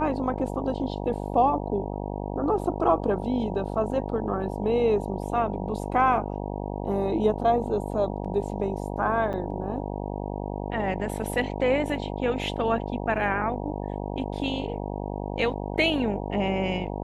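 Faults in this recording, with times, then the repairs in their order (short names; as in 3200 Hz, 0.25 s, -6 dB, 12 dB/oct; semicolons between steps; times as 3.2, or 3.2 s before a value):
buzz 50 Hz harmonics 19 -32 dBFS
9.33–9.34 gap 6.8 ms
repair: de-hum 50 Hz, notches 19; interpolate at 9.33, 6.8 ms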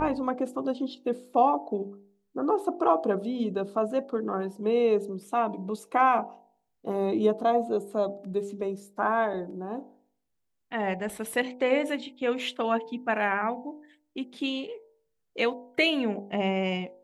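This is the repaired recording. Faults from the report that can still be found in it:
none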